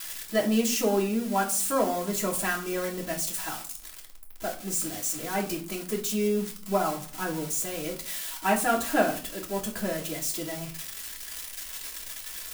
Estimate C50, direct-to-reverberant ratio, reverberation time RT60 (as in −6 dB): 11.0 dB, −7.0 dB, 0.45 s